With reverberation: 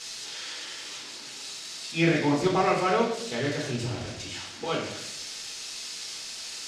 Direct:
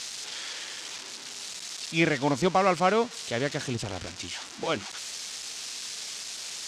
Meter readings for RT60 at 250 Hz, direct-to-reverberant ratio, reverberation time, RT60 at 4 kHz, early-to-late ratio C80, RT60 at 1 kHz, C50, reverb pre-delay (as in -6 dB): 0.95 s, -4.5 dB, 0.75 s, 0.70 s, 6.5 dB, 0.60 s, 3.5 dB, 5 ms